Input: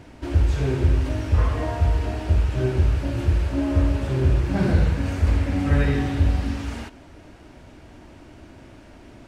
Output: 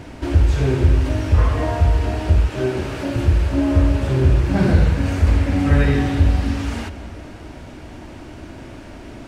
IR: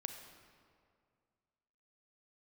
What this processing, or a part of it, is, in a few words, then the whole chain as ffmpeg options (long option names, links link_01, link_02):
ducked reverb: -filter_complex "[0:a]asettb=1/sr,asplit=3[link_01][link_02][link_03];[link_01]atrim=end=2.484[link_04];[link_02]atrim=start=2.48:end=3.16,asetpts=PTS-STARTPTS,afade=type=in:duration=0.004:curve=qsin,afade=type=out:start_time=0.676:duration=0.004:curve=qsin,highpass=200[link_05];[link_03]atrim=start=3.156[link_06];[link_04][link_05]acrossfade=duration=0.004:curve1=hsin:curve2=qsin[link_07];[link_07][link_06]acrossfade=duration=0.004:curve1=qsin:curve2=hsin,asplit=3[link_08][link_09][link_10];[1:a]atrim=start_sample=2205[link_11];[link_09][link_11]afir=irnorm=-1:irlink=0[link_12];[link_10]apad=whole_len=408842[link_13];[link_12][link_13]sidechaincompress=threshold=-33dB:ratio=8:attack=16:release=325,volume=1dB[link_14];[link_08][link_14]amix=inputs=2:normalize=0,volume=3.5dB"